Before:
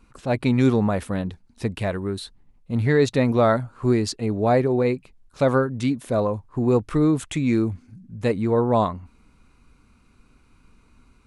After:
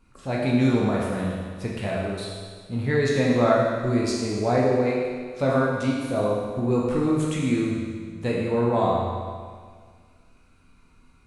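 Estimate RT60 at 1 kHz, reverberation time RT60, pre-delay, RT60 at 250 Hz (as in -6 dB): 1.8 s, 1.8 s, 12 ms, 1.8 s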